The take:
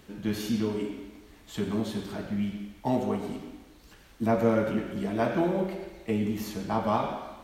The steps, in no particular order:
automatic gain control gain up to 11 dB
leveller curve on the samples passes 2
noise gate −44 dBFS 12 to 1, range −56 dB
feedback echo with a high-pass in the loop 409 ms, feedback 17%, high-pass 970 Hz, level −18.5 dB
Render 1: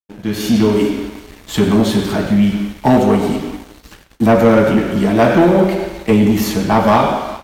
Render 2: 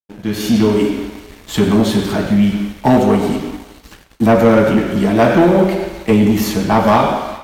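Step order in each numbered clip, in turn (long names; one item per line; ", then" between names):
feedback echo with a high-pass in the loop, then automatic gain control, then noise gate, then leveller curve on the samples
automatic gain control, then noise gate, then leveller curve on the samples, then feedback echo with a high-pass in the loop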